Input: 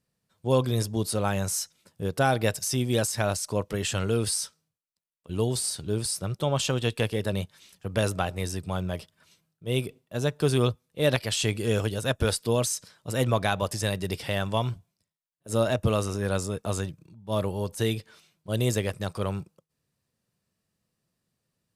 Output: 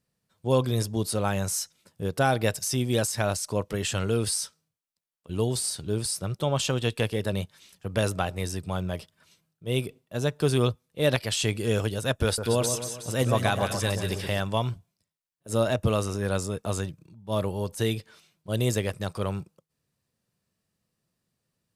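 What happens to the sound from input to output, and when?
12.25–14.40 s: two-band feedback delay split 1.4 kHz, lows 128 ms, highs 183 ms, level -7 dB

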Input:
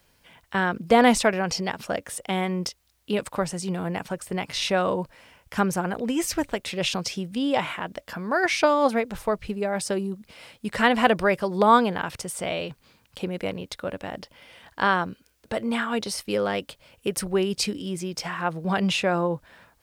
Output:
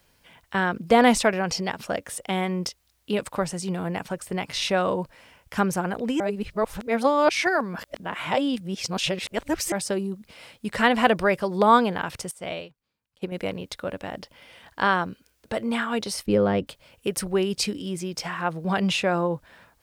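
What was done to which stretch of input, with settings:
6.20–9.72 s: reverse
12.31–13.32 s: upward expansion 2.5:1, over -41 dBFS
16.26–16.67 s: tilt EQ -3.5 dB/octave

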